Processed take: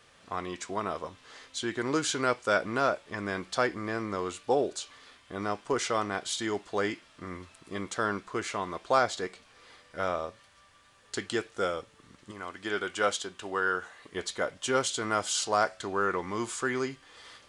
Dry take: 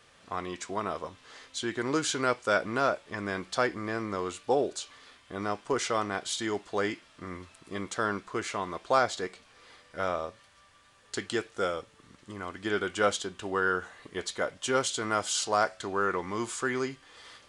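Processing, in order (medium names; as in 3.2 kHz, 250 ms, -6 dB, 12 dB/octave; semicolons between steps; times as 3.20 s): 12.31–14.13 s: bass shelf 320 Hz -8 dB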